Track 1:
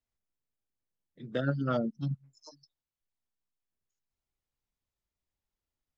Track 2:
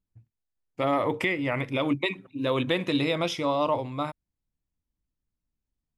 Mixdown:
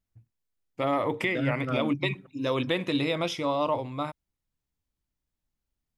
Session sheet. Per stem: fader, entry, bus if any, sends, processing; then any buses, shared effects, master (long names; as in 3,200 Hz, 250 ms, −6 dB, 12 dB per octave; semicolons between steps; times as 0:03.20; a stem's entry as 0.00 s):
−1.5 dB, 0.00 s, no send, no processing
−1.5 dB, 0.00 s, no send, no processing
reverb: not used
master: no processing